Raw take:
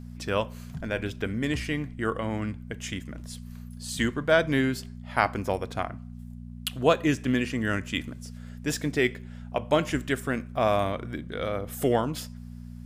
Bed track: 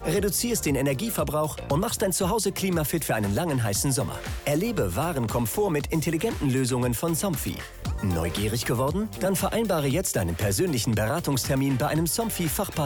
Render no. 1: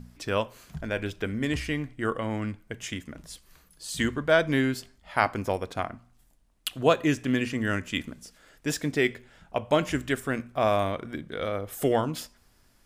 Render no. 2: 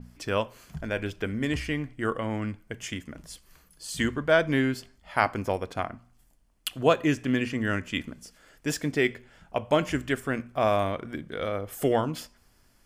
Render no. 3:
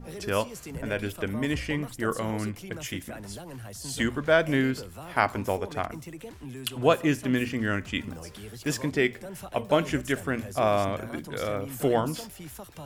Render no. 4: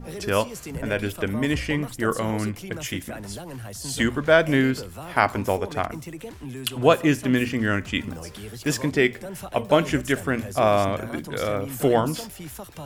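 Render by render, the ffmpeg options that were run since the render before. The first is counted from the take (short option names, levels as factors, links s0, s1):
-af "bandreject=f=60:t=h:w=4,bandreject=f=120:t=h:w=4,bandreject=f=180:t=h:w=4,bandreject=f=240:t=h:w=4"
-af "bandreject=f=3800:w=12,adynamicequalizer=threshold=0.00447:dfrequency=5000:dqfactor=0.7:tfrequency=5000:tqfactor=0.7:attack=5:release=100:ratio=0.375:range=2.5:mode=cutabove:tftype=highshelf"
-filter_complex "[1:a]volume=0.158[s0];[0:a][s0]amix=inputs=2:normalize=0"
-af "volume=1.68,alimiter=limit=0.794:level=0:latency=1"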